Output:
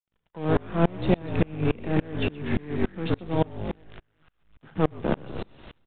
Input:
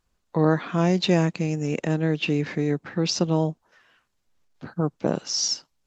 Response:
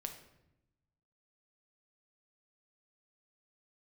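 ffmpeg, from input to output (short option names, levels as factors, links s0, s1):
-filter_complex "[0:a]acrossover=split=180|920[s0][s1][s2];[s0]acompressor=threshold=0.0251:ratio=4[s3];[s1]acompressor=threshold=0.0794:ratio=4[s4];[s2]acompressor=threshold=0.0158:ratio=4[s5];[s3][s4][s5]amix=inputs=3:normalize=0,asplit=7[s6][s7][s8][s9][s10][s11][s12];[s7]adelay=123,afreqshift=-53,volume=0.596[s13];[s8]adelay=246,afreqshift=-106,volume=0.275[s14];[s9]adelay=369,afreqshift=-159,volume=0.126[s15];[s10]adelay=492,afreqshift=-212,volume=0.0582[s16];[s11]adelay=615,afreqshift=-265,volume=0.0266[s17];[s12]adelay=738,afreqshift=-318,volume=0.0123[s18];[s6][s13][s14][s15][s16][s17][s18]amix=inputs=7:normalize=0,aeval=exprs='0.168*(cos(1*acos(clip(val(0)/0.168,-1,1)))-cos(1*PI/2))+0.015*(cos(8*acos(clip(val(0)/0.168,-1,1)))-cos(8*PI/2))':c=same,asplit=2[s19][s20];[s20]asoftclip=type=tanh:threshold=0.0335,volume=0.708[s21];[s19][s21]amix=inputs=2:normalize=0,acrusher=bits=7:dc=4:mix=0:aa=0.000001,asplit=2[s22][s23];[1:a]atrim=start_sample=2205,afade=t=out:st=0.33:d=0.01,atrim=end_sample=14994[s24];[s23][s24]afir=irnorm=-1:irlink=0,volume=1[s25];[s22][s25]amix=inputs=2:normalize=0,aresample=8000,aresample=44100,aeval=exprs='val(0)*pow(10,-31*if(lt(mod(-3.5*n/s,1),2*abs(-3.5)/1000),1-mod(-3.5*n/s,1)/(2*abs(-3.5)/1000),(mod(-3.5*n/s,1)-2*abs(-3.5)/1000)/(1-2*abs(-3.5)/1000))/20)':c=same"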